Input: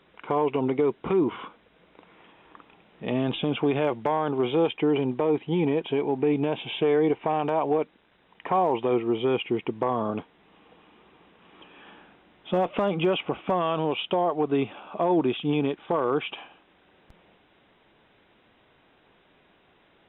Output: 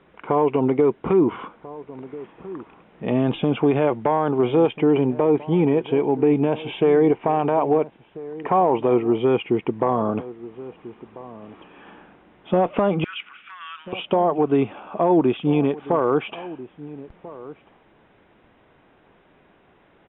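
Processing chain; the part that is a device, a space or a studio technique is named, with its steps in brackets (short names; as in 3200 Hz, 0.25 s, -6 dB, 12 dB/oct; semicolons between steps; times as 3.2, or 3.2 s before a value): 13.04–13.93 elliptic high-pass 1400 Hz, stop band 60 dB; shout across a valley (air absorption 440 m; outdoor echo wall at 230 m, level -17 dB); gain +6.5 dB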